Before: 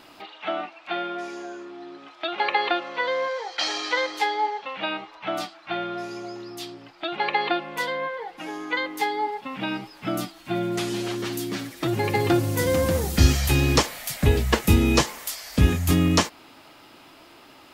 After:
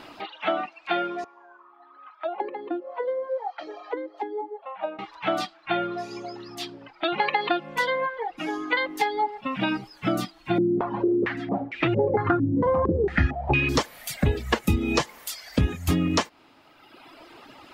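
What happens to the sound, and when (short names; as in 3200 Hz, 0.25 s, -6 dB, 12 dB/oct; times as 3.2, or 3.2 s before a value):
1.24–4.99 auto-wah 290–1400 Hz, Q 3.1, down, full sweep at -19.5 dBFS
10.58–13.69 stepped low-pass 4.4 Hz 300–2500 Hz
whole clip: reverb removal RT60 1.4 s; high shelf 6000 Hz -11.5 dB; compressor 4:1, threshold -26 dBFS; gain +6 dB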